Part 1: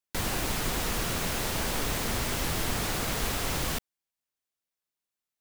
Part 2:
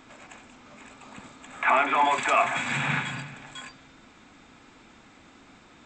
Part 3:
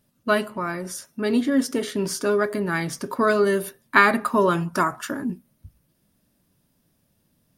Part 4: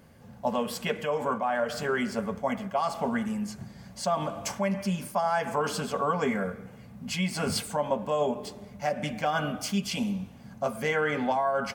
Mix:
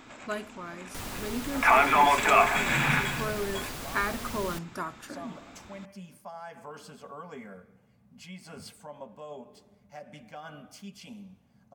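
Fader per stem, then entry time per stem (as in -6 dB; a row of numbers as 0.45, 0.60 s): -8.5, +1.5, -13.5, -16.0 dB; 0.80, 0.00, 0.00, 1.10 s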